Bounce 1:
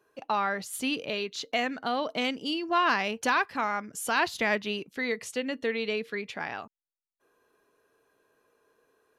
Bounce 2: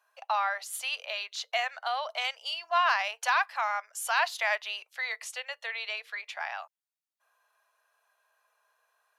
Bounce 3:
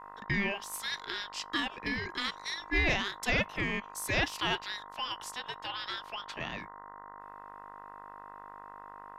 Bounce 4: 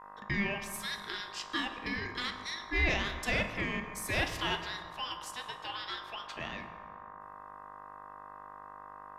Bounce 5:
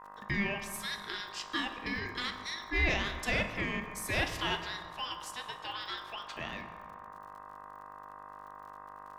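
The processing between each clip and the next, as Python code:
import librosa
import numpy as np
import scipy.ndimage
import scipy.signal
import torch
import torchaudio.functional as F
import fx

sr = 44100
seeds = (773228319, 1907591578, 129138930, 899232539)

y1 = scipy.signal.sosfilt(scipy.signal.butter(8, 630.0, 'highpass', fs=sr, output='sos'), x)
y2 = fx.dmg_buzz(y1, sr, base_hz=50.0, harmonics=20, level_db=-45.0, tilt_db=-5, odd_only=False)
y2 = y2 * np.sin(2.0 * np.pi * 1000.0 * np.arange(len(y2)) / sr)
y3 = fx.rev_fdn(y2, sr, rt60_s=2.1, lf_ratio=1.05, hf_ratio=0.5, size_ms=88.0, drr_db=5.5)
y3 = y3 * librosa.db_to_amplitude(-2.5)
y4 = fx.dmg_crackle(y3, sr, seeds[0], per_s=66.0, level_db=-49.0)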